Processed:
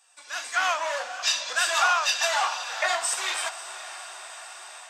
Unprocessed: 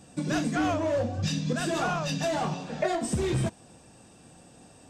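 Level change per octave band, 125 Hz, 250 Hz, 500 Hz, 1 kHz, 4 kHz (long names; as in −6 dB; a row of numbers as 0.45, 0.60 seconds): below −40 dB, below −25 dB, −4.5 dB, +6.0 dB, +11.0 dB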